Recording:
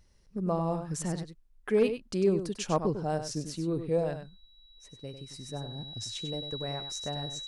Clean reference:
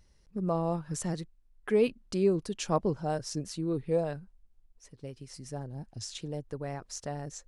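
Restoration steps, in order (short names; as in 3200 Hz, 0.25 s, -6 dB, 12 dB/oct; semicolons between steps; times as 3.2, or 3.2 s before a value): clip repair -16.5 dBFS; notch 3900 Hz, Q 30; inverse comb 98 ms -9 dB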